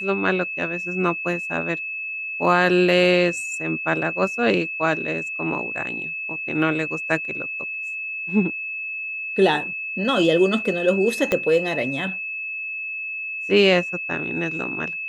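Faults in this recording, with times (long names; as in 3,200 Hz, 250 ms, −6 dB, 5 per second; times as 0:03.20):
whistle 2,600 Hz −27 dBFS
0:11.32: click −7 dBFS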